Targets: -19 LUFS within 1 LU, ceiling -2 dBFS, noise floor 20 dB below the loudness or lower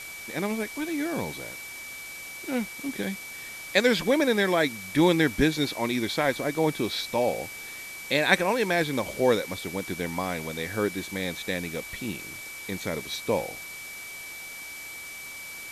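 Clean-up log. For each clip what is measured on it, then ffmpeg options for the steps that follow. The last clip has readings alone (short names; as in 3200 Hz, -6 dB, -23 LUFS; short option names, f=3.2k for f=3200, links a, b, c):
steady tone 2300 Hz; tone level -39 dBFS; noise floor -40 dBFS; noise floor target -48 dBFS; loudness -28.0 LUFS; peak -4.5 dBFS; loudness target -19.0 LUFS
-> -af "bandreject=f=2.3k:w=30"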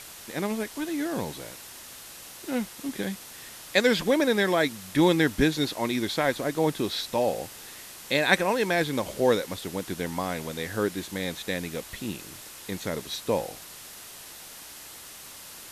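steady tone none; noise floor -45 dBFS; noise floor target -47 dBFS
-> -af "afftdn=nr=6:nf=-45"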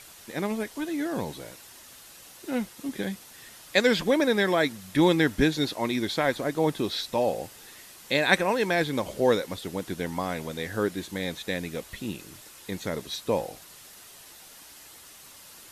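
noise floor -49 dBFS; loudness -27.5 LUFS; peak -5.5 dBFS; loudness target -19.0 LUFS
-> -af "volume=8.5dB,alimiter=limit=-2dB:level=0:latency=1"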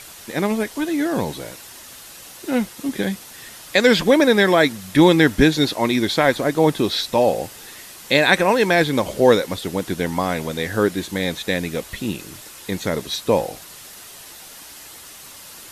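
loudness -19.0 LUFS; peak -2.0 dBFS; noise floor -41 dBFS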